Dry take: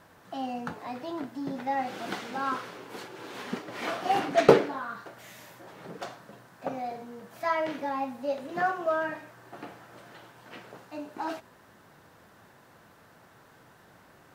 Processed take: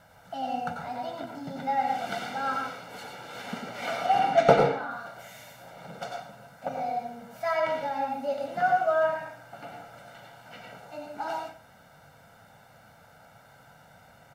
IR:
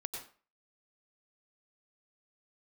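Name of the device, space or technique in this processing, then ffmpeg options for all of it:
microphone above a desk: -filter_complex "[0:a]asettb=1/sr,asplit=3[a][b][c];[a]atrim=end=4.064[d];[b]atrim=start=4.06:end=4.91,asetpts=PTS-STARTPTS,afade=t=in:d=0.004:c=qsin,afade=t=out:st=0.846:d=0.004:c=qsin,highshelf=f=4.6k:g=-7[e];[c]atrim=start=4.906[f];[d][e]acrossfade=d=0.004:c1=hsin:c2=qsin[g];[g][f]acrossfade=d=0.004:c1=qsin:c2=hsin,aecho=1:1:1.4:0.81[h];[1:a]atrim=start_sample=2205[i];[h][i]afir=irnorm=-1:irlink=0"

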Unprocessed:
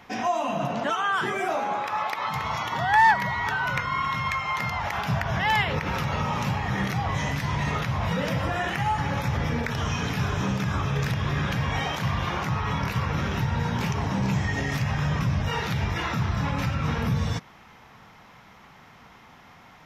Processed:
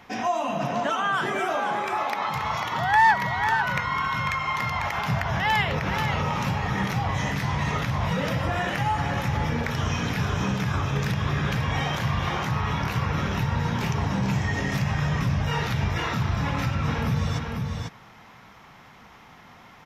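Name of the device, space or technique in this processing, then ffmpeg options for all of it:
ducked delay: -filter_complex "[0:a]asplit=3[a][b][c];[b]adelay=496,volume=-4.5dB[d];[c]apad=whole_len=897596[e];[d][e]sidechaincompress=threshold=-28dB:ratio=8:attack=46:release=144[f];[a][f]amix=inputs=2:normalize=0"

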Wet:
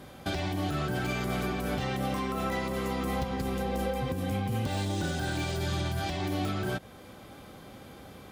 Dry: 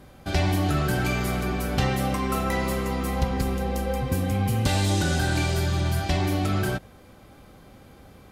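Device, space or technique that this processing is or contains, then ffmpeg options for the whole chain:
broadcast voice chain: -af "highpass=f=120:p=1,deesser=0.8,acompressor=threshold=-29dB:ratio=3,equalizer=f=3.4k:t=o:w=0.25:g=4,alimiter=level_in=0.5dB:limit=-24dB:level=0:latency=1:release=330,volume=-0.5dB,volume=3dB"

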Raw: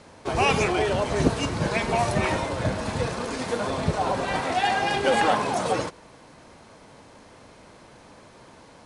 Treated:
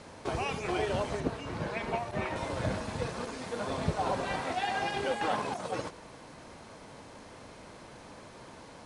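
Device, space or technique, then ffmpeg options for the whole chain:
de-esser from a sidechain: -filter_complex "[0:a]asplit=2[a][b];[b]highpass=f=6.5k:w=0.5412,highpass=f=6.5k:w=1.3066,apad=whole_len=390465[c];[a][c]sidechaincompress=threshold=-54dB:ratio=8:attack=2.3:release=22,asettb=1/sr,asplit=3[d][e][f];[d]atrim=end=1.204[g];[e]atrim=start=1.2:end=2.36,asetpts=PTS-STARTPTS,afade=t=in:d=0.004:c=qsin,afade=t=out:st=1.156:d=0.004:c=qsin,bass=f=250:g=-3,treble=f=4k:g=-8[h];[f]atrim=start=2.356[i];[g][h]acrossfade=d=0.004:c1=hsin:c2=qsin[j];[j][i]acrossfade=d=0.004:c1=qsin:c2=hsin"

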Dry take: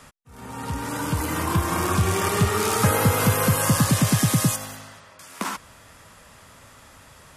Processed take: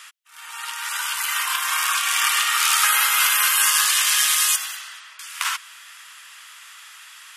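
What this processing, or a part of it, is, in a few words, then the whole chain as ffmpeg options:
headphones lying on a table: -af "highpass=f=1.3k:w=0.5412,highpass=f=1.3k:w=1.3066,equalizer=f=3k:t=o:w=0.53:g=6,volume=7.5dB"

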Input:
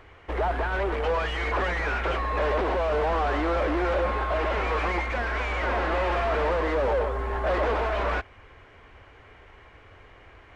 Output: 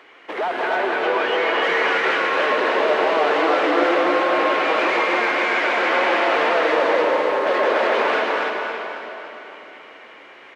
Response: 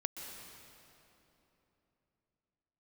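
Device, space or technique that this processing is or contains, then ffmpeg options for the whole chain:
stadium PA: -filter_complex "[0:a]asettb=1/sr,asplit=3[a][b][c];[a]atrim=end=0.754[d];[b]atrim=start=0.75:end=1.62,asetpts=PTS-STARTPTS,afade=t=in:d=0.004:c=qsin,afade=t=out:st=0.866:d=0.004:c=qsin,highshelf=f=6k:g=-11[e];[c]atrim=start=1.616[f];[d][e]acrossfade=d=0.004:c1=hsin:c2=qsin[g];[g][f]acrossfade=d=0.004:c1=qsin:c2=hsin,highpass=f=230:w=0.5412,highpass=f=230:w=1.3066,equalizer=f=3.2k:t=o:w=2.1:g=6,aecho=1:1:239.1|291.5:0.282|0.708,aecho=1:1:278|556|834|1112|1390|1668:0.316|0.164|0.0855|0.0445|0.0231|0.012[h];[1:a]atrim=start_sample=2205[i];[h][i]afir=irnorm=-1:irlink=0,volume=3.5dB"

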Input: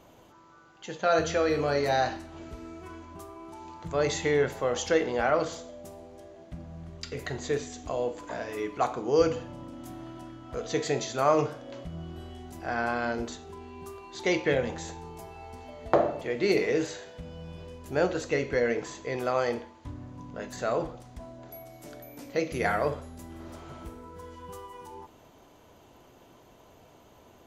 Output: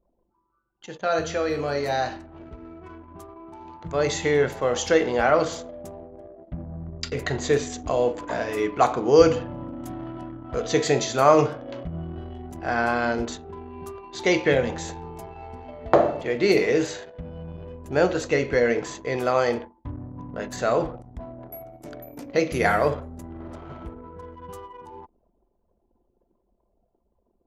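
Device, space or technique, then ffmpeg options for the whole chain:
voice memo with heavy noise removal: -af "anlmdn=0.0398,dynaudnorm=f=930:g=11:m=11.5dB"

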